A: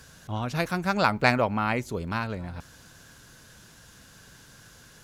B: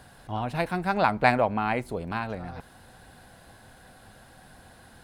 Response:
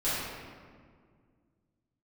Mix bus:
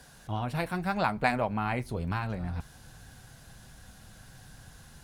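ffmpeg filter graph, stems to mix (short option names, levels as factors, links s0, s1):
-filter_complex "[0:a]volume=0.841[s0];[1:a]highshelf=f=4400:g=8,volume=0.75,asplit=2[s1][s2];[s2]apad=whole_len=222132[s3];[s0][s3]sidechaincompress=threshold=0.0224:ratio=8:attack=16:release=432[s4];[s4][s1]amix=inputs=2:normalize=0,flanger=delay=4:depth=4.4:regen=-66:speed=0.78:shape=triangular,asubboost=boost=3:cutoff=200"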